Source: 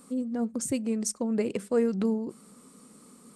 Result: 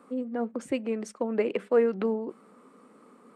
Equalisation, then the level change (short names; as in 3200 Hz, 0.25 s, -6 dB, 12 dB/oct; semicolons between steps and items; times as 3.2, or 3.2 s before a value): dynamic EQ 3200 Hz, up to +7 dB, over -54 dBFS, Q 0.9; three-band isolator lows -17 dB, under 290 Hz, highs -23 dB, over 2400 Hz; +4.5 dB